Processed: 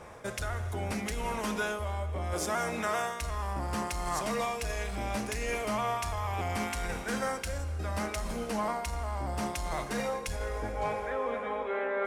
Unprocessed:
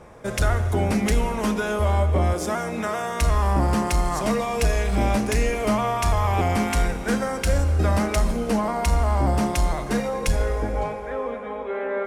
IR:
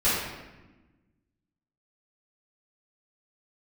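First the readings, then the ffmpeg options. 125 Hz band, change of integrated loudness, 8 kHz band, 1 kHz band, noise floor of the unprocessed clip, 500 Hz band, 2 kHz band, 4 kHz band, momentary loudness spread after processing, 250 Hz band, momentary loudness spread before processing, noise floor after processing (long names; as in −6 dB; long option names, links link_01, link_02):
−14.0 dB, −10.0 dB, −7.0 dB, −7.5 dB, −32 dBFS, −9.0 dB, −6.0 dB, −7.0 dB, 4 LU, −12.5 dB, 6 LU, −39 dBFS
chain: -af "equalizer=frequency=86:width_type=o:width=1.3:gain=5.5,areverse,acompressor=threshold=-26dB:ratio=6,areverse,lowshelf=frequency=460:gain=-10,volume=2dB"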